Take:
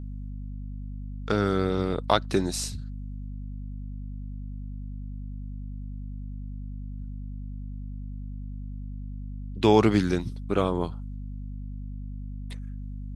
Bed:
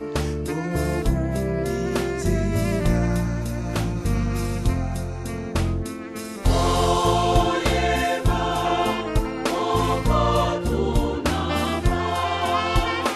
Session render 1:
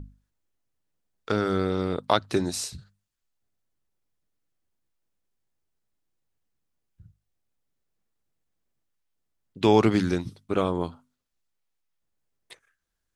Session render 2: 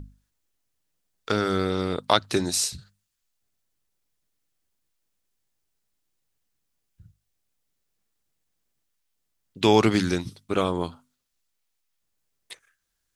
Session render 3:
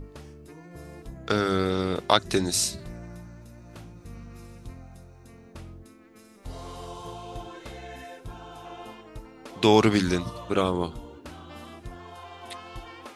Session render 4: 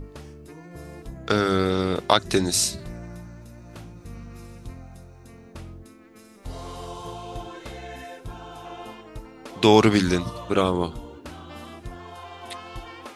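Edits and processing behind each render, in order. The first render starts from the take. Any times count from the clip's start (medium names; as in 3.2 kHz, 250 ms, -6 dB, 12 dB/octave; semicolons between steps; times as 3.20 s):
hum notches 50/100/150/200/250 Hz
treble shelf 2 kHz +8 dB
add bed -20 dB
trim +3 dB; peak limiter -1 dBFS, peak gain reduction 2.5 dB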